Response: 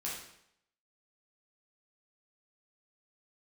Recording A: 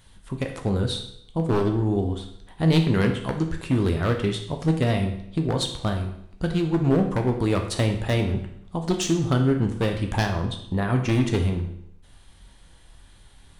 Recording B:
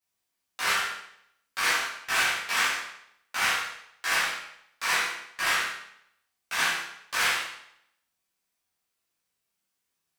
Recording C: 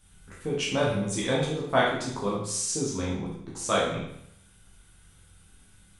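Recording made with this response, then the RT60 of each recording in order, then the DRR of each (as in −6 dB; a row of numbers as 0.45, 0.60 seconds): C; 0.75, 0.75, 0.75 seconds; 3.5, −11.5, −6.0 decibels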